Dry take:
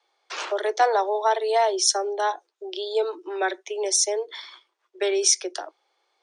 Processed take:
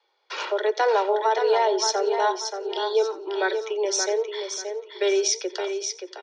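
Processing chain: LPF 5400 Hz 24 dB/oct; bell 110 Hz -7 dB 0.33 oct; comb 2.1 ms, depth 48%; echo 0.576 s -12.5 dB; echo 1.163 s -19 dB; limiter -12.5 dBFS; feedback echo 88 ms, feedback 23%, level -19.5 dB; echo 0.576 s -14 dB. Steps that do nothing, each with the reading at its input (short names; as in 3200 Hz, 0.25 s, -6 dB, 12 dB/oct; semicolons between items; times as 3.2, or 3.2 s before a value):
bell 110 Hz: input band starts at 300 Hz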